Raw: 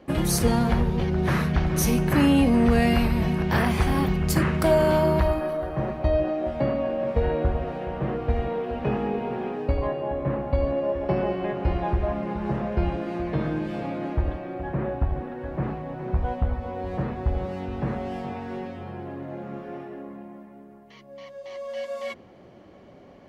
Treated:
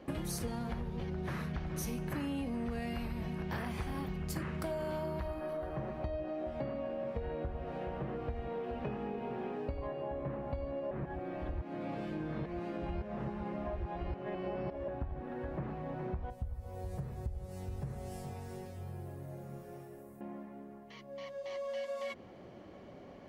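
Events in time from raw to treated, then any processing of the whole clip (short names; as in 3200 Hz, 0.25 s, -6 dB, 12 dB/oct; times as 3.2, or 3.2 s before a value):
10.91–14.88 reverse
16.3–20.21 EQ curve 130 Hz 0 dB, 270 Hz -17 dB, 390 Hz -8 dB, 1100 Hz -13 dB, 3100 Hz -11 dB, 9200 Hz +15 dB
whole clip: compressor 5:1, threshold -34 dBFS; gain -2.5 dB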